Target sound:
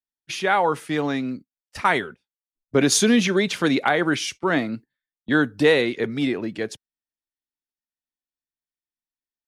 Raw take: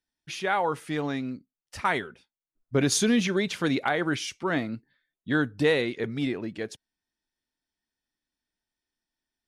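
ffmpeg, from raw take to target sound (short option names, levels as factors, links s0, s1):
-filter_complex "[0:a]agate=range=0.1:threshold=0.00794:ratio=16:detection=peak,acrossover=split=150|1100|5200[s0][s1][s2][s3];[s0]acompressor=threshold=0.00355:ratio=6[s4];[s4][s1][s2][s3]amix=inputs=4:normalize=0,volume=2"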